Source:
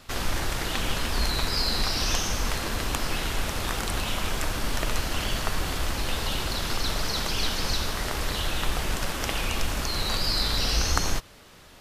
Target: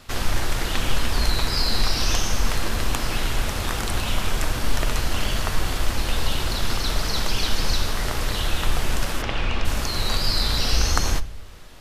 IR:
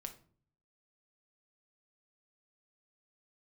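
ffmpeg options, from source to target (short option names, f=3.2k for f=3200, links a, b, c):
-filter_complex "[0:a]asplit=3[a][b][c];[a]afade=t=out:st=9.21:d=0.02[d];[b]lowpass=3.6k,afade=t=in:st=9.21:d=0.02,afade=t=out:st=9.64:d=0.02[e];[c]afade=t=in:st=9.64:d=0.02[f];[d][e][f]amix=inputs=3:normalize=0,asplit=2[g][h];[h]lowshelf=f=110:g=9[i];[1:a]atrim=start_sample=2205,asetrate=27783,aresample=44100[j];[i][j]afir=irnorm=-1:irlink=0,volume=-5dB[k];[g][k]amix=inputs=2:normalize=0,volume=-1dB"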